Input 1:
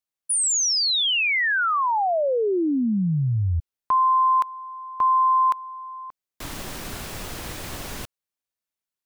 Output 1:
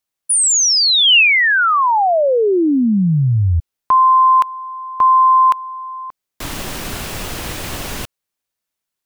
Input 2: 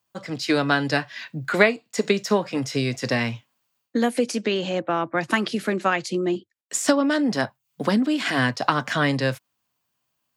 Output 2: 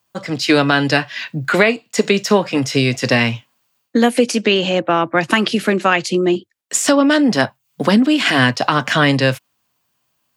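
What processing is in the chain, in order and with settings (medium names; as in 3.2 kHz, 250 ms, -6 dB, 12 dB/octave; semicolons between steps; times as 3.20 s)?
dynamic bell 2.8 kHz, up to +5 dB, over -45 dBFS, Q 3.2; loudness maximiser +9 dB; trim -1 dB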